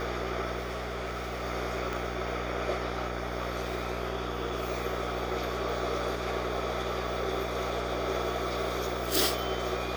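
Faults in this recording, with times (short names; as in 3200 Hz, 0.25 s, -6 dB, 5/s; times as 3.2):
buzz 60 Hz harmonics 31 -37 dBFS
0.58–1.44 clipped -31 dBFS
1.93 pop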